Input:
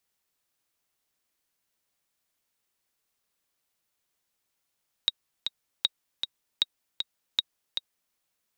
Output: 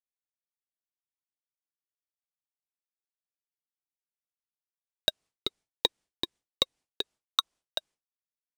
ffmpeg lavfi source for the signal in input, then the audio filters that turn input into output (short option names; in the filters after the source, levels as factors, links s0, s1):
-f lavfi -i "aevalsrc='pow(10,(-9-6.5*gte(mod(t,2*60/156),60/156))/20)*sin(2*PI*3790*mod(t,60/156))*exp(-6.91*mod(t,60/156)/0.03)':d=3.07:s=44100"
-filter_complex "[0:a]lowpass=f=9500:w=0.5412,lowpass=f=9500:w=1.3066,agate=range=0.0224:threshold=0.00398:ratio=3:detection=peak,asplit=2[s0][s1];[s1]acrusher=samples=25:mix=1:aa=0.000001:lfo=1:lforange=15:lforate=0.37,volume=0.501[s2];[s0][s2]amix=inputs=2:normalize=0"